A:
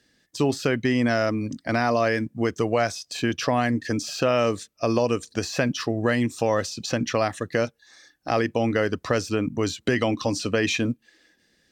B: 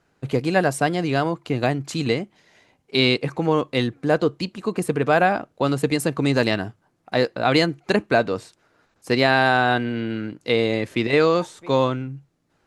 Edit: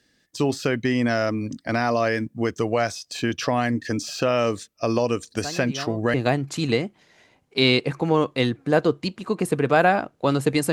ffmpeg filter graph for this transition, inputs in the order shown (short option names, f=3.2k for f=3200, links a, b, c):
-filter_complex "[1:a]asplit=2[a][b];[0:a]apad=whole_dur=10.72,atrim=end=10.72,atrim=end=6.142[c];[b]atrim=start=1.508:end=6.09[d];[a]atrim=start=0.74:end=1.51,asetpts=PTS-STARTPTS,volume=-13dB,afade=t=in:d=0.004:c=hsin,afade=t=out:st=0.766:d=0.004:c=hsin,adelay=236817S[e];[c][d]acrossfade=d=0.004:c1=hsin:c2=hsin[f];[f][e]amix=inputs=2:normalize=0"